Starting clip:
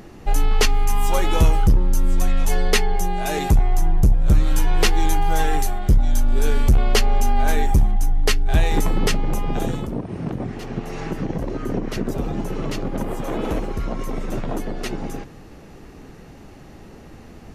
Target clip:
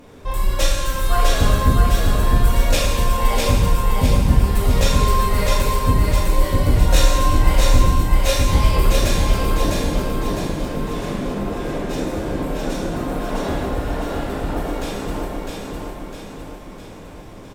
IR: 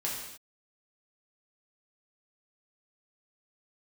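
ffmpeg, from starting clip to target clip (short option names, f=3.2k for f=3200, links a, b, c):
-filter_complex "[0:a]asetrate=57191,aresample=44100,atempo=0.771105,aecho=1:1:655|1310|1965|2620|3275|3930|4585:0.708|0.354|0.177|0.0885|0.0442|0.0221|0.0111[a];[1:a]atrim=start_sample=2205,asetrate=31311,aresample=44100[b];[a][b]afir=irnorm=-1:irlink=0,volume=-6.5dB"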